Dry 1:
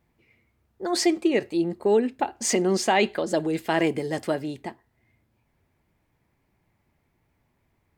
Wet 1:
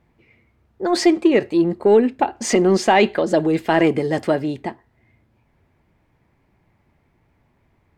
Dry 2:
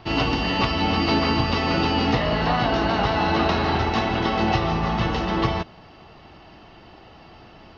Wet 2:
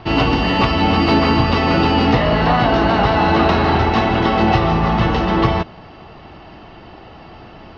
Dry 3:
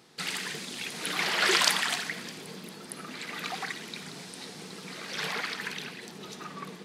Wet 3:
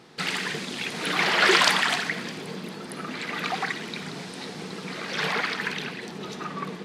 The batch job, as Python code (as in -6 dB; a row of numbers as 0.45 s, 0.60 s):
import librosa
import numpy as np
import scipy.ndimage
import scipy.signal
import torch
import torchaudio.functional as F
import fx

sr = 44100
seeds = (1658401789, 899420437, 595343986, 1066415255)

p1 = 10.0 ** (-21.5 / 20.0) * np.tanh(x / 10.0 ** (-21.5 / 20.0))
p2 = x + (p1 * librosa.db_to_amplitude(-8.5))
p3 = fx.lowpass(p2, sr, hz=2900.0, slope=6)
y = p3 * librosa.db_to_amplitude(5.5)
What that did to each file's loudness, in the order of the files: +6.5 LU, +6.5 LU, +4.5 LU